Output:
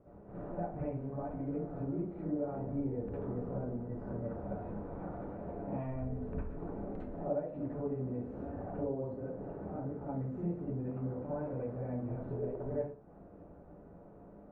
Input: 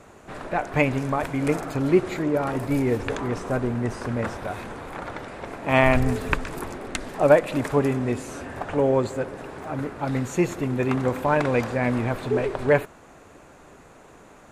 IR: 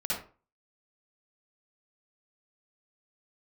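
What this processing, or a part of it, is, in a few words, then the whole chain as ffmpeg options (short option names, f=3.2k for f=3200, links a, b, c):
television next door: -filter_complex "[0:a]acompressor=threshold=-31dB:ratio=4,lowpass=540[a];[1:a]atrim=start_sample=2205[b];[a][b]afir=irnorm=-1:irlink=0,volume=-8.5dB"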